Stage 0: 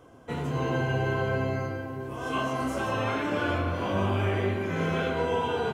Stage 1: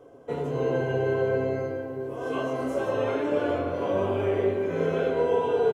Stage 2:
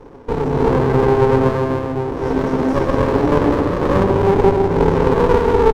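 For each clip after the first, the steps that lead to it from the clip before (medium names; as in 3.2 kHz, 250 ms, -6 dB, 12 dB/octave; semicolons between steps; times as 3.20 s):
peaking EQ 470 Hz +15 dB 1.2 oct; comb 7.1 ms, depth 33%; trim -7 dB
delay 241 ms -8.5 dB; reverberation RT60 0.70 s, pre-delay 3 ms, DRR 13 dB; sliding maximum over 33 samples; trim +2 dB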